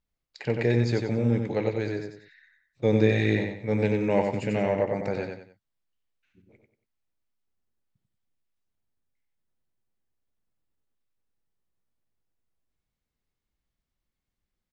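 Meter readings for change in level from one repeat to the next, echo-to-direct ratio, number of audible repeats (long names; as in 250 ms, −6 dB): −9.5 dB, −4.5 dB, 3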